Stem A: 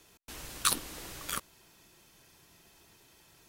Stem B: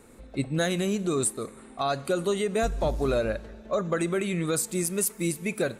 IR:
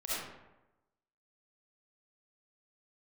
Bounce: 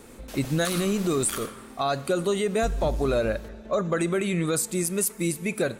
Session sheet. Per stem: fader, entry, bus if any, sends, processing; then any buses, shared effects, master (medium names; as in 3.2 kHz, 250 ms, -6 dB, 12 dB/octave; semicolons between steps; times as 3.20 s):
+0.5 dB, 0.00 s, send -7 dB, none
+2.5 dB, 0.00 s, no send, gain riding within 5 dB 2 s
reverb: on, RT60 1.0 s, pre-delay 25 ms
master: peak limiter -16 dBFS, peak gain reduction 8.5 dB